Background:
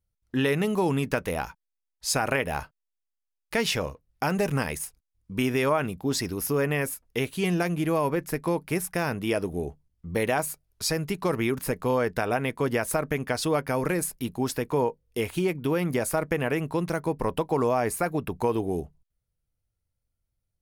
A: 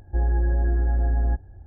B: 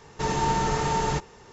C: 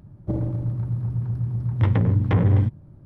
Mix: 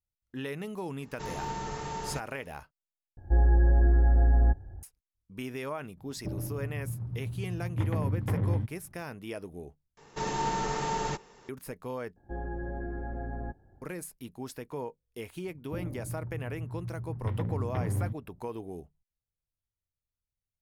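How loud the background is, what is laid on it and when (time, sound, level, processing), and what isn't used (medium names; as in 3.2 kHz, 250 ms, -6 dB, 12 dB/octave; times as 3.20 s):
background -12.5 dB
1.00 s: add B -11.5 dB
3.17 s: replace with A
5.97 s: add C -10.5 dB
9.97 s: replace with B -5.5 dB + peaking EQ 77 Hz -14.5 dB
12.16 s: replace with A -15 dB + spectral peaks clipped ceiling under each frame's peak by 15 dB
15.44 s: add C -13 dB + level-controlled noise filter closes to 440 Hz, open at -13.5 dBFS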